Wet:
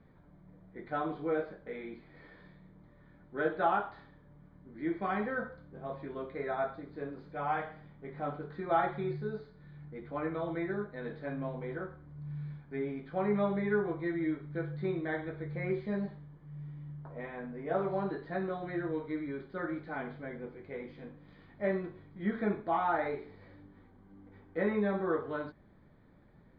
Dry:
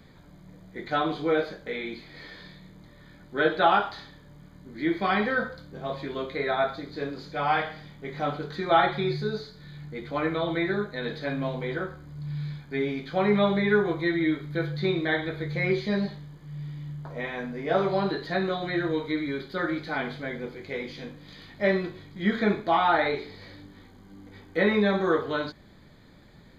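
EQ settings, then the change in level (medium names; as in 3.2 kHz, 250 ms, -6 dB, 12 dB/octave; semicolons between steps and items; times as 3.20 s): low-pass 1.6 kHz 12 dB/octave; -7.5 dB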